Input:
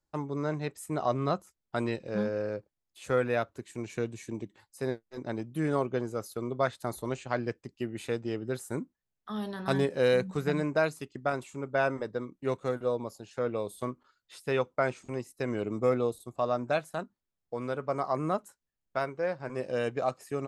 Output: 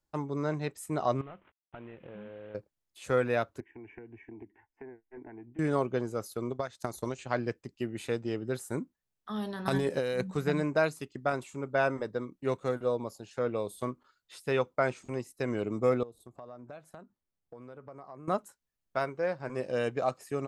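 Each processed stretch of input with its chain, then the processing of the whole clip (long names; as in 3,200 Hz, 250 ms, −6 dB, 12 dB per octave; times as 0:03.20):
0:01.21–0:02.55: variable-slope delta modulation 16 kbit/s + downward compressor, threshold −43 dBFS
0:03.60–0:05.59: downward compressor 12 to 1, threshold −38 dBFS + low-pass filter 2,200 Hz 24 dB per octave + phaser with its sweep stopped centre 820 Hz, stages 8
0:06.50–0:07.19: parametric band 6,100 Hz +8.5 dB 0.73 octaves + downward compressor 12 to 1, threshold −29 dBFS + transient designer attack +4 dB, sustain −9 dB
0:09.65–0:10.21: high-shelf EQ 10,000 Hz +10 dB + compressor whose output falls as the input rises −29 dBFS
0:16.03–0:18.28: high-shelf EQ 2,000 Hz −8.5 dB + downward compressor 4 to 1, threshold −46 dBFS
whole clip: no processing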